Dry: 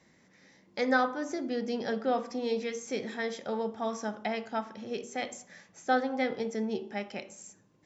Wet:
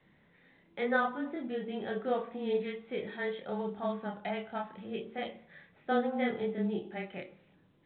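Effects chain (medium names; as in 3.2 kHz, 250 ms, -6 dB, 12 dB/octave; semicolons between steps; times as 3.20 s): frequency shift -16 Hz; chorus voices 2, 0.39 Hz, delay 28 ms, depth 1.5 ms; µ-law 64 kbps 8 kHz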